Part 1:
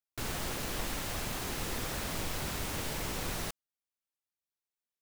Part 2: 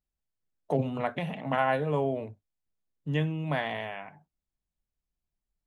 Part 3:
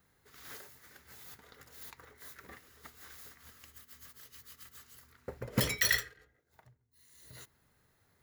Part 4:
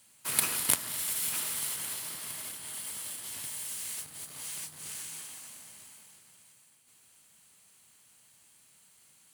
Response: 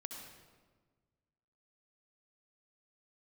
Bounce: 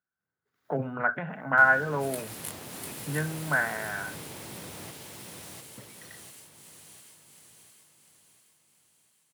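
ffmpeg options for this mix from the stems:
-filter_complex "[0:a]equalizer=frequency=1300:width=1.5:gain=-3.5,adelay=1400,volume=0dB,asplit=2[link_01][link_02];[link_02]volume=-9dB[link_03];[1:a]lowpass=frequency=1500:width_type=q:width=15,volume=-3.5dB[link_04];[2:a]adelay=200,volume=-18dB[link_05];[3:a]flanger=delay=18:depth=7.7:speed=0.32,adelay=1750,volume=-9.5dB,asplit=2[link_06][link_07];[link_07]volume=-4dB[link_08];[link_01][link_05]amix=inputs=2:normalize=0,highshelf=frequency=2300:gain=-10.5,acompressor=threshold=-39dB:ratio=6,volume=0dB[link_09];[link_03][link_08]amix=inputs=2:normalize=0,aecho=0:1:698|1396|2094|2792|3490|4188|4886:1|0.48|0.23|0.111|0.0531|0.0255|0.0122[link_10];[link_04][link_06][link_09][link_10]amix=inputs=4:normalize=0,highpass=frequency=100:width=0.5412,highpass=frequency=100:width=1.3066"

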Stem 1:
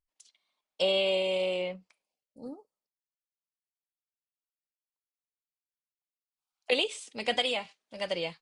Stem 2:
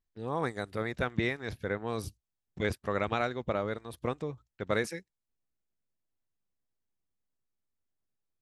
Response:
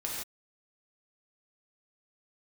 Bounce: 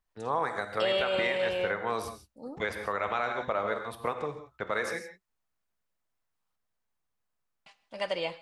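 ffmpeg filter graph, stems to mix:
-filter_complex "[0:a]volume=-3.5dB,asplit=3[link_01][link_02][link_03];[link_01]atrim=end=6.56,asetpts=PTS-STARTPTS,afade=type=out:start_time=6.556:duration=0.004:curve=hsin[link_04];[link_02]atrim=start=6.56:end=7.66,asetpts=PTS-STARTPTS,volume=0[link_05];[link_03]atrim=start=7.66,asetpts=PTS-STARTPTS,afade=type=in:duration=0.004:curve=hsin[link_06];[link_04][link_05][link_06]concat=n=3:v=0:a=1,asplit=2[link_07][link_08];[link_08]volume=-17dB[link_09];[1:a]equalizer=frequency=310:width_type=o:width=1:gain=-4,acrossover=split=300[link_10][link_11];[link_10]acompressor=threshold=-47dB:ratio=3[link_12];[link_12][link_11]amix=inputs=2:normalize=0,volume=-2.5dB,asplit=2[link_13][link_14];[link_14]volume=-6dB[link_15];[2:a]atrim=start_sample=2205[link_16];[link_09][link_15]amix=inputs=2:normalize=0[link_17];[link_17][link_16]afir=irnorm=-1:irlink=0[link_18];[link_07][link_13][link_18]amix=inputs=3:normalize=0,equalizer=frequency=1100:width=0.61:gain=8.5,alimiter=limit=-18dB:level=0:latency=1:release=186"

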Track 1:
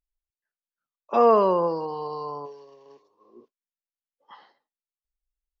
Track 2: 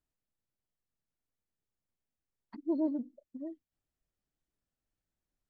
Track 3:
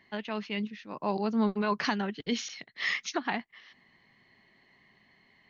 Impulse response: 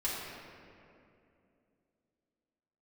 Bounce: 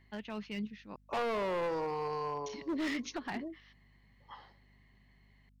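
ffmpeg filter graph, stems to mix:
-filter_complex "[0:a]acompressor=threshold=-21dB:ratio=6,asoftclip=type=tanh:threshold=-23.5dB,volume=-2.5dB[link_01];[1:a]volume=-1.5dB[link_02];[2:a]equalizer=frequency=110:width=1.4:gain=12.5,volume=-7.5dB,asplit=3[link_03][link_04][link_05];[link_03]atrim=end=0.96,asetpts=PTS-STARTPTS,afade=type=out:start_time=0.956:duration=0.004:curve=hsin[link_06];[link_04]atrim=start=0.96:end=2.46,asetpts=PTS-STARTPTS,volume=0[link_07];[link_05]atrim=start=2.46,asetpts=PTS-STARTPTS,afade=type=in:duration=0.004:curve=hsin[link_08];[link_06][link_07][link_08]concat=n=3:v=0:a=1[link_09];[link_01][link_02][link_09]amix=inputs=3:normalize=0,aeval=exprs='val(0)+0.000631*(sin(2*PI*50*n/s)+sin(2*PI*2*50*n/s)/2+sin(2*PI*3*50*n/s)/3+sin(2*PI*4*50*n/s)/4+sin(2*PI*5*50*n/s)/5)':channel_layout=same,volume=31dB,asoftclip=hard,volume=-31dB"

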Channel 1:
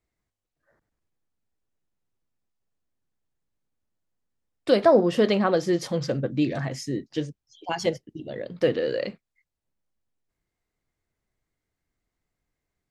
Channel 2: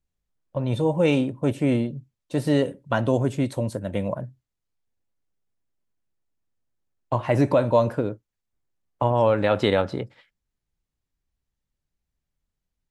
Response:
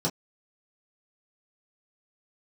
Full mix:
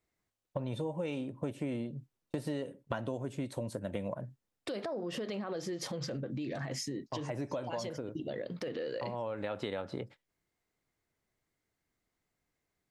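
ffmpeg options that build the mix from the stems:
-filter_complex "[0:a]acompressor=threshold=-26dB:ratio=6,alimiter=level_in=3.5dB:limit=-24dB:level=0:latency=1:release=59,volume=-3.5dB,volume=0.5dB,asplit=2[link_01][link_02];[1:a]agate=range=-34dB:threshold=-41dB:ratio=16:detection=peak,volume=0.5dB[link_03];[link_02]apad=whole_len=569301[link_04];[link_03][link_04]sidechaincompress=threshold=-48dB:ratio=6:attack=16:release=1080[link_05];[link_01][link_05]amix=inputs=2:normalize=0,lowshelf=frequency=75:gain=-11,acompressor=threshold=-33dB:ratio=10"

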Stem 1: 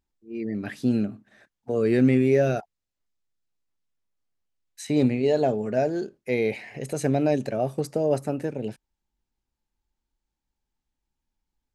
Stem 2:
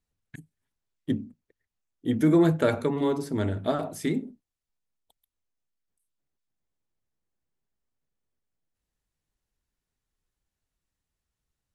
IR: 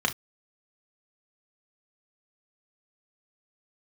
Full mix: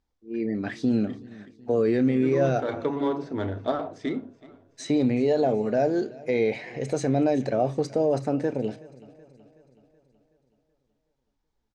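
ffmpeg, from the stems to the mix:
-filter_complex "[0:a]alimiter=limit=-17dB:level=0:latency=1:release=39,volume=2dB,asplit=4[link_01][link_02][link_03][link_04];[link_02]volume=-19dB[link_05];[link_03]volume=-20.5dB[link_06];[1:a]adynamicsmooth=sensitivity=3.5:basefreq=3300,equalizer=frequency=170:width=1:gain=-6,volume=0dB,asplit=3[link_07][link_08][link_09];[link_08]volume=-19.5dB[link_10];[link_09]volume=-21.5dB[link_11];[link_04]apad=whole_len=517808[link_12];[link_07][link_12]sidechaincompress=threshold=-41dB:ratio=8:attack=37:release=174[link_13];[2:a]atrim=start_sample=2205[link_14];[link_05][link_10]amix=inputs=2:normalize=0[link_15];[link_15][link_14]afir=irnorm=-1:irlink=0[link_16];[link_06][link_11]amix=inputs=2:normalize=0,aecho=0:1:375|750|1125|1500|1875|2250|2625|3000:1|0.54|0.292|0.157|0.085|0.0459|0.0248|0.0134[link_17];[link_01][link_13][link_16][link_17]amix=inputs=4:normalize=0,lowpass=frequency=7200:width=0.5412,lowpass=frequency=7200:width=1.3066"

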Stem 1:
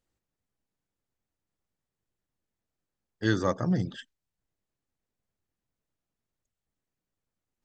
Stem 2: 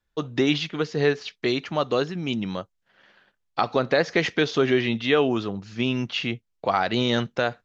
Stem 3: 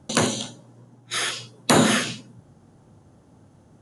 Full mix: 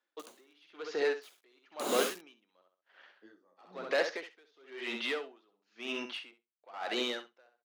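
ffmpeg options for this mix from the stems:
ffmpeg -i stem1.wav -i stem2.wav -i stem3.wav -filter_complex "[0:a]lowpass=frequency=1200:poles=1,flanger=delay=16:depth=5.3:speed=2.4,volume=-1.5dB,asplit=2[link_01][link_02];[link_02]volume=-8dB[link_03];[1:a]asplit=2[link_04][link_05];[link_05]highpass=frequency=720:poles=1,volume=20dB,asoftclip=type=tanh:threshold=-5dB[link_06];[link_04][link_06]amix=inputs=2:normalize=0,lowpass=frequency=3200:poles=1,volume=-6dB,volume=-13.5dB,asplit=2[link_07][link_08];[link_08]volume=-7.5dB[link_09];[2:a]equalizer=frequency=1800:width_type=o:width=0.24:gain=-14.5,acrusher=bits=3:mix=0:aa=0.000001,adelay=100,volume=-12.5dB[link_10];[link_03][link_09]amix=inputs=2:normalize=0,aecho=0:1:65|130|195:1|0.17|0.0289[link_11];[link_01][link_07][link_10][link_11]amix=inputs=4:normalize=0,highpass=frequency=280:width=0.5412,highpass=frequency=280:width=1.3066,aeval=exprs='val(0)*pow(10,-36*(0.5-0.5*cos(2*PI*1*n/s))/20)':channel_layout=same" out.wav

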